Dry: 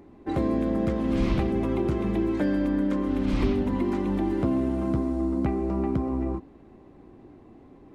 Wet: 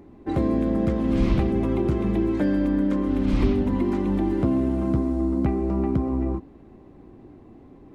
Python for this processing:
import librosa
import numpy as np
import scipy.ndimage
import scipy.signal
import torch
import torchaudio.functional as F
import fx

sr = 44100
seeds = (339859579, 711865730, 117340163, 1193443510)

y = fx.low_shelf(x, sr, hz=340.0, db=4.5)